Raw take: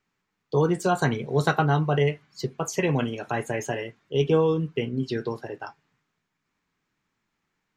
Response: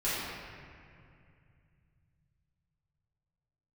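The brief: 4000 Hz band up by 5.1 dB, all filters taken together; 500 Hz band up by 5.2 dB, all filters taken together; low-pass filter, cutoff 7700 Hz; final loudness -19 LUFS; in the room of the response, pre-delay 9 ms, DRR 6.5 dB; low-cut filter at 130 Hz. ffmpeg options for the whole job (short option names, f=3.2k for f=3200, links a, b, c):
-filter_complex "[0:a]highpass=130,lowpass=7.7k,equalizer=f=500:t=o:g=6,equalizer=f=4k:t=o:g=7,asplit=2[a][b];[1:a]atrim=start_sample=2205,adelay=9[c];[b][c]afir=irnorm=-1:irlink=0,volume=-16dB[d];[a][d]amix=inputs=2:normalize=0,volume=2.5dB"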